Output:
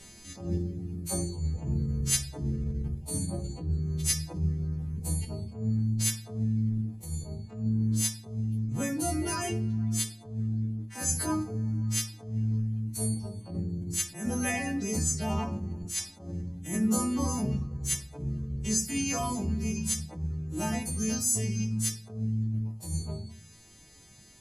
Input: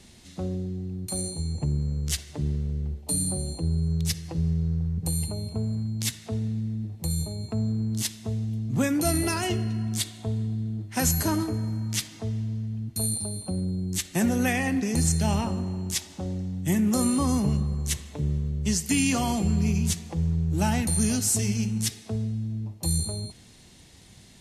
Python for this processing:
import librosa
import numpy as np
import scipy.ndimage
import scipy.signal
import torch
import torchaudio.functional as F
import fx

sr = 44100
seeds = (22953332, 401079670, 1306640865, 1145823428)

p1 = fx.freq_snap(x, sr, grid_st=2)
p2 = fx.high_shelf(p1, sr, hz=7500.0, db=5.5)
p3 = p2 + fx.echo_single(p2, sr, ms=88, db=-20.0, dry=0)
p4 = fx.dereverb_blind(p3, sr, rt60_s=0.69)
p5 = fx.high_shelf(p4, sr, hz=2400.0, db=-10.0)
p6 = fx.level_steps(p5, sr, step_db=17)
p7 = p5 + (p6 * 10.0 ** (0.5 / 20.0))
p8 = fx.room_shoebox(p7, sr, seeds[0], volume_m3=67.0, walls='mixed', distance_m=0.41)
p9 = fx.rider(p8, sr, range_db=10, speed_s=2.0)
p10 = fx.attack_slew(p9, sr, db_per_s=120.0)
y = p10 * 10.0 ** (-7.0 / 20.0)